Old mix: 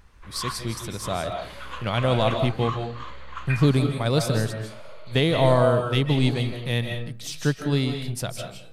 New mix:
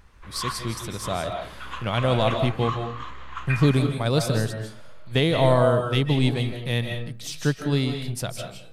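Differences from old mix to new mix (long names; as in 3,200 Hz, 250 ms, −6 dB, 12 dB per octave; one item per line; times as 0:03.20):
first sound: send on
second sound −10.0 dB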